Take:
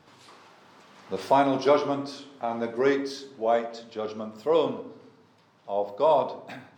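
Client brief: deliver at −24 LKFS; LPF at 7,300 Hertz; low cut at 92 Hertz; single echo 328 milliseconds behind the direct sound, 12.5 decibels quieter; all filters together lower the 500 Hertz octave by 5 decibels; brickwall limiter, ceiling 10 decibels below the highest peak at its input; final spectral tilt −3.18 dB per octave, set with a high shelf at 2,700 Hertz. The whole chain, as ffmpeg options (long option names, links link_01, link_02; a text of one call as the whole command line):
ffmpeg -i in.wav -af "highpass=92,lowpass=7300,equalizer=frequency=500:width_type=o:gain=-6.5,highshelf=frequency=2700:gain=3,alimiter=limit=-21.5dB:level=0:latency=1,aecho=1:1:328:0.237,volume=10dB" out.wav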